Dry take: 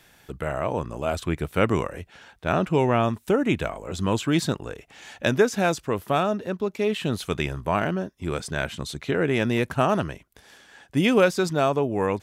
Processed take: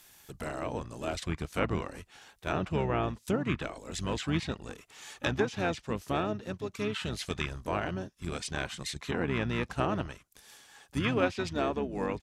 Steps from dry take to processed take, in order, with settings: harmoniser -12 st -4 dB, -7 st -10 dB; pre-emphasis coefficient 0.8; treble ducked by the level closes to 2700 Hz, closed at -28.5 dBFS; gain +3 dB

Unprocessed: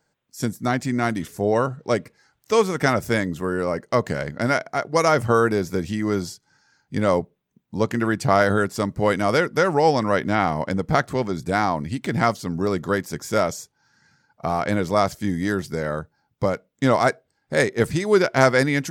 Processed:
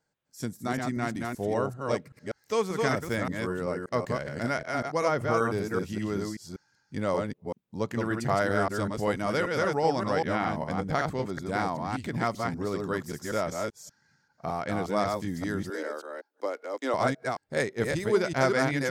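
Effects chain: reverse delay 0.193 s, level -3 dB; 4.94–5.38 high shelf 4400 Hz -7 dB; 15.7–16.94 steep high-pass 280 Hz 48 dB/oct; gain -9 dB

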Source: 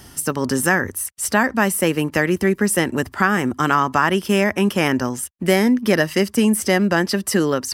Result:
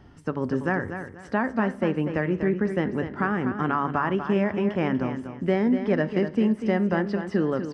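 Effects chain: tape spacing loss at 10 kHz 40 dB; feedback echo 0.243 s, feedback 28%, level -9 dB; on a send at -15 dB: reverb RT60 0.60 s, pre-delay 7 ms; on the sum: gain -4.5 dB

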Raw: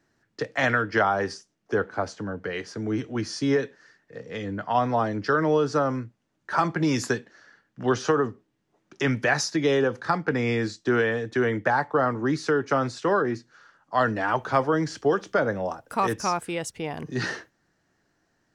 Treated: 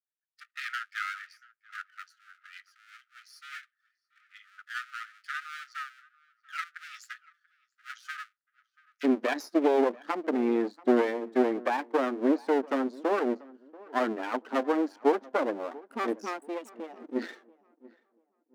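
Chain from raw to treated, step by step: per-bin expansion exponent 1.5; tilt -4.5 dB/oct; half-wave rectifier; brick-wall FIR high-pass 1200 Hz, from 9.03 s 220 Hz; darkening echo 0.686 s, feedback 30%, low-pass 1800 Hz, level -21.5 dB

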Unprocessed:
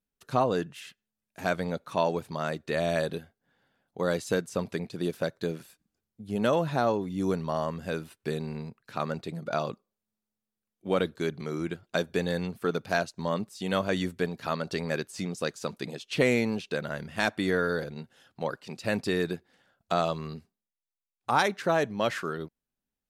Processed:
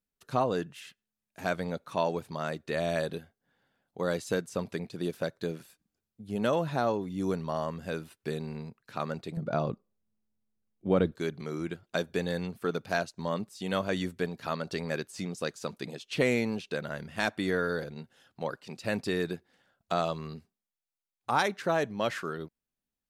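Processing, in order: 9.37–11.12 tilt -3 dB/oct; gain -2.5 dB

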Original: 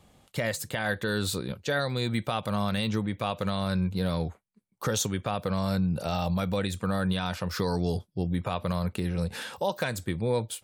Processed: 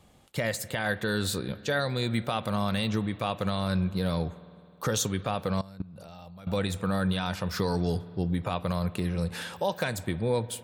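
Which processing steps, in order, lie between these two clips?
spring tank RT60 2.5 s, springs 52 ms, chirp 25 ms, DRR 16 dB; 5.61–6.47 level quantiser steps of 23 dB

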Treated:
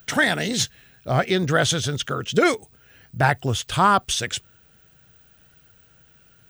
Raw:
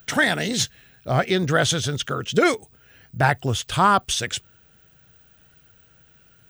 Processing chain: bit-crush 11-bit

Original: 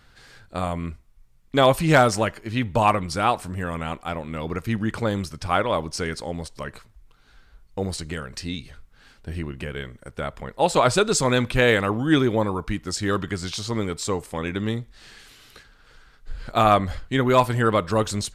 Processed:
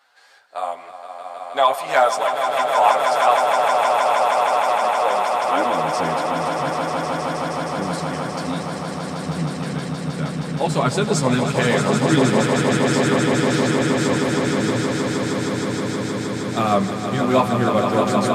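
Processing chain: chorus voices 6, 0.48 Hz, delay 11 ms, depth 4.2 ms; high-pass sweep 720 Hz -> 170 Hz, 4.95–5.89; swelling echo 0.157 s, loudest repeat 8, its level -7 dB

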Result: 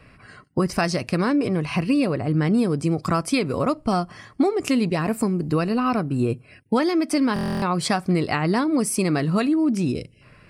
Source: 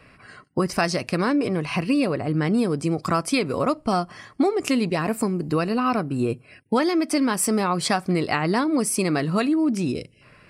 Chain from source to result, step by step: low shelf 170 Hz +7.5 dB; stuck buffer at 7.34, samples 1024, times 11; gain -1 dB

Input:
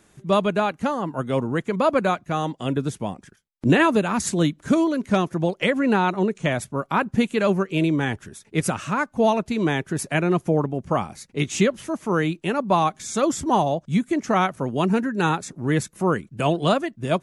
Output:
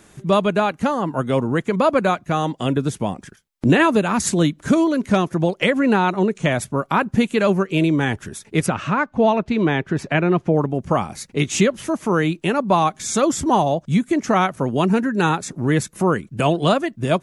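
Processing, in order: 8.66–10.56 LPF 3600 Hz 12 dB/oct; in parallel at +3 dB: compressor, threshold -28 dBFS, peak gain reduction 15 dB

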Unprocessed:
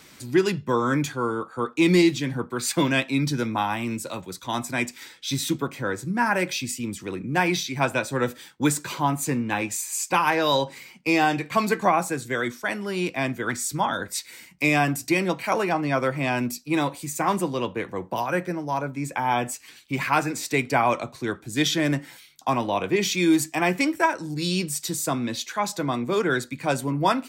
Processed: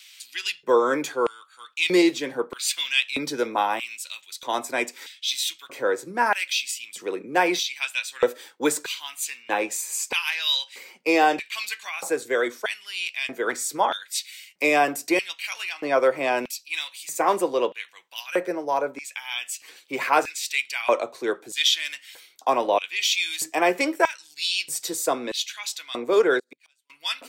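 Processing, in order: 26.39–26.9 flipped gate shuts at -22 dBFS, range -37 dB; LFO high-pass square 0.79 Hz 460–2900 Hz

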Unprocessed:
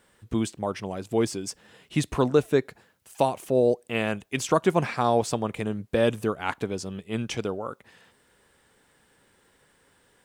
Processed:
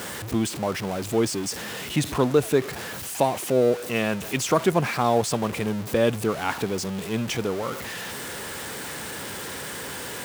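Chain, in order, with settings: zero-crossing step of -28.5 dBFS; HPF 76 Hz

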